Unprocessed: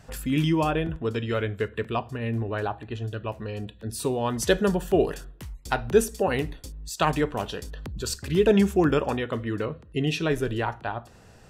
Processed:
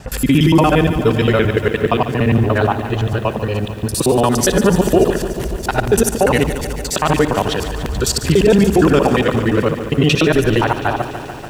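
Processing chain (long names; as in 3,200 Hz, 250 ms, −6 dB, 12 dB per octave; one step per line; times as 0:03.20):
reversed piece by piece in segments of 58 ms
boost into a limiter +16.5 dB
feedback echo at a low word length 145 ms, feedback 80%, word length 6 bits, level −12 dB
level −3 dB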